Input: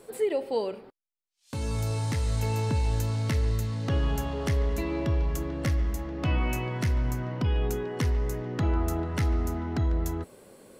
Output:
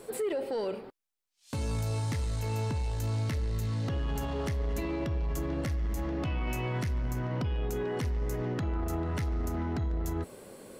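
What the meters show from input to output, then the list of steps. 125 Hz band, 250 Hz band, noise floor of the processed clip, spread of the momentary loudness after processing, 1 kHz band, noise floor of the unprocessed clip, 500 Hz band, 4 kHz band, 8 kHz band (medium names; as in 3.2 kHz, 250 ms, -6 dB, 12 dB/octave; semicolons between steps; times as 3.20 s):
-4.0 dB, -3.0 dB, -62 dBFS, 2 LU, -3.5 dB, -65 dBFS, -3.0 dB, -4.5 dB, -3.5 dB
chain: peak limiter -26.5 dBFS, peak gain reduction 10 dB; saturation -28 dBFS, distortion -21 dB; trim +3.5 dB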